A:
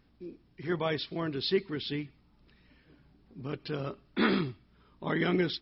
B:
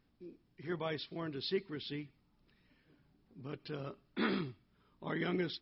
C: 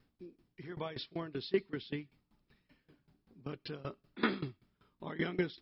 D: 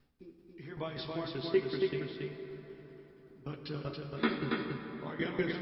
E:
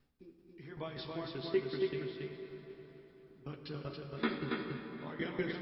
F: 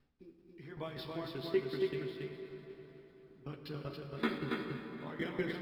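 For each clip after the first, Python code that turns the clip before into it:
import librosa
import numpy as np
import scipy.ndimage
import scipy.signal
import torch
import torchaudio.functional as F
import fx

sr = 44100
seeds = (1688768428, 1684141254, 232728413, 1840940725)

y1 = fx.peak_eq(x, sr, hz=65.0, db=-13.0, octaves=0.2)
y1 = F.gain(torch.from_numpy(y1), -7.5).numpy()
y2 = fx.tremolo_decay(y1, sr, direction='decaying', hz=5.2, depth_db=19)
y2 = F.gain(torch.from_numpy(y2), 6.0).numpy()
y3 = fx.chorus_voices(y2, sr, voices=4, hz=0.47, base_ms=14, depth_ms=2.0, mix_pct=35)
y3 = y3 + 10.0 ** (-3.5 / 20.0) * np.pad(y3, (int(279 * sr / 1000.0), 0))[:len(y3)]
y3 = fx.rev_plate(y3, sr, seeds[0], rt60_s=4.2, hf_ratio=0.5, predelay_ms=0, drr_db=5.0)
y3 = F.gain(torch.from_numpy(y3), 3.0).numpy()
y4 = fx.echo_feedback(y3, sr, ms=250, feedback_pct=58, wet_db=-15.5)
y4 = F.gain(torch.from_numpy(y4), -3.5).numpy()
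y5 = scipy.signal.medfilt(y4, 5)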